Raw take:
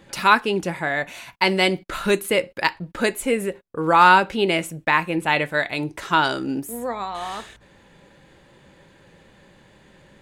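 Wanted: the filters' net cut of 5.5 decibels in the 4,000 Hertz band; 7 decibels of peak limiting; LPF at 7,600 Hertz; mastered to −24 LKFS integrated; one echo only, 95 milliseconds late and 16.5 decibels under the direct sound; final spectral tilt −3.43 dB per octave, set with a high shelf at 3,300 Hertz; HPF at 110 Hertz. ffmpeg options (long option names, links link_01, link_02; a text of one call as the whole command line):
ffmpeg -i in.wav -af "highpass=110,lowpass=7600,highshelf=frequency=3300:gain=-6.5,equalizer=frequency=4000:width_type=o:gain=-3,alimiter=limit=-10.5dB:level=0:latency=1,aecho=1:1:95:0.15,volume=0.5dB" out.wav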